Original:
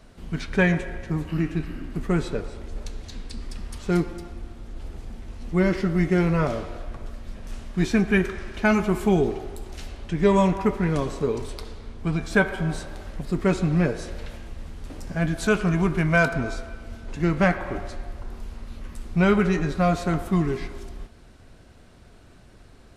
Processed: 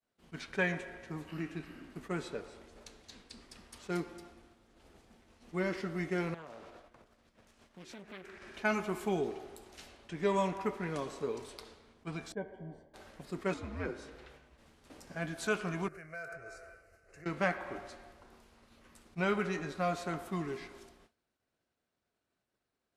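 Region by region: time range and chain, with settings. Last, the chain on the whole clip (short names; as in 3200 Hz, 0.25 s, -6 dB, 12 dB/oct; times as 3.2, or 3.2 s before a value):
6.34–8.42 compressor 5:1, threshold -34 dBFS + Doppler distortion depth 0.67 ms
12.32–12.94 running mean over 34 samples + resonator 92 Hz, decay 0.2 s, harmonics odd, mix 40%
13.54–14.58 high shelf 3900 Hz -9.5 dB + frequency shift -88 Hz
15.88–17.26 hard clip -12 dBFS + compressor 10:1, threshold -28 dBFS + fixed phaser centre 930 Hz, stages 6
whole clip: HPF 400 Hz 6 dB/oct; expander -44 dBFS; attack slew limiter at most 590 dB/s; gain -8.5 dB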